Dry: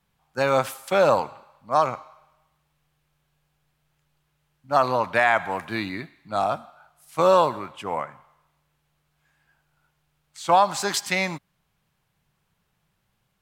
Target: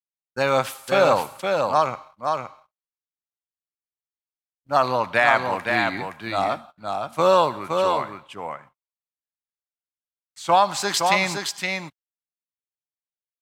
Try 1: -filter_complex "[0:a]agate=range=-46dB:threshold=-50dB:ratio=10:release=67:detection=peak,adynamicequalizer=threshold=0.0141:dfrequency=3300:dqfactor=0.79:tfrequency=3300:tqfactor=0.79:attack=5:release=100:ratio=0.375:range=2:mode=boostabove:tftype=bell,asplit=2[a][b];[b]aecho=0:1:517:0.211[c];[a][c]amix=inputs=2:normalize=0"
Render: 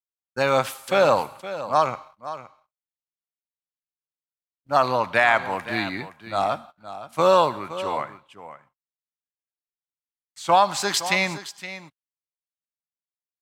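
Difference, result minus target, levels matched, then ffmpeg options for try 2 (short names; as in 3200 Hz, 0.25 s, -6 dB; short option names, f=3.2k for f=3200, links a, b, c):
echo-to-direct -9 dB
-filter_complex "[0:a]agate=range=-46dB:threshold=-50dB:ratio=10:release=67:detection=peak,adynamicequalizer=threshold=0.0141:dfrequency=3300:dqfactor=0.79:tfrequency=3300:tqfactor=0.79:attack=5:release=100:ratio=0.375:range=2:mode=boostabove:tftype=bell,asplit=2[a][b];[b]aecho=0:1:517:0.596[c];[a][c]amix=inputs=2:normalize=0"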